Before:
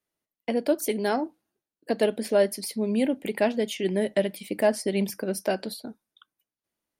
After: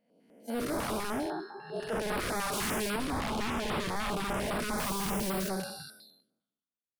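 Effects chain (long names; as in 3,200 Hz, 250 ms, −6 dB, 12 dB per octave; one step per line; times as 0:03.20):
spectrum smeared in time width 661 ms
noise reduction from a noise print of the clip's start 25 dB
0:02.53–0:02.96: leveller curve on the samples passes 2
wave folding −34 dBFS
0:04.78–0:05.49: bit-depth reduction 8 bits, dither triangular
notch on a step sequencer 10 Hz 370–6,400 Hz
level +7.5 dB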